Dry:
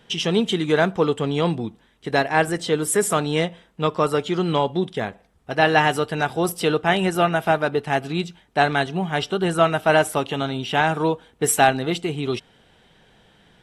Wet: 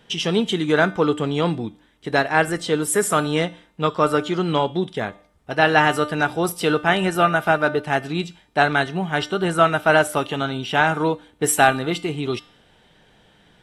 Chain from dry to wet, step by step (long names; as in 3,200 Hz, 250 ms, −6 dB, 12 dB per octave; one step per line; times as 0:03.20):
dynamic equaliser 1,400 Hz, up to +6 dB, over −38 dBFS, Q 3.8
tuned comb filter 300 Hz, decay 0.53 s, harmonics all, mix 60%
level +7.5 dB